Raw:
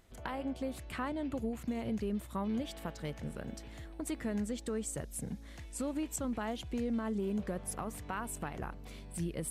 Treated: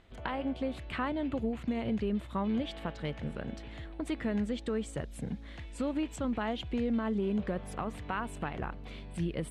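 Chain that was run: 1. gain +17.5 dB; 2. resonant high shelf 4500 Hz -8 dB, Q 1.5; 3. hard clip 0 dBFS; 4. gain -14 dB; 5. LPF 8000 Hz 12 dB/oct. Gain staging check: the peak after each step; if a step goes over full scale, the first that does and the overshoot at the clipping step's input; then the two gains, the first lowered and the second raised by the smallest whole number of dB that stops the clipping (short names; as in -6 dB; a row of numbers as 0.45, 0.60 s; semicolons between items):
-6.0, -5.0, -5.0, -19.0, -19.0 dBFS; no overload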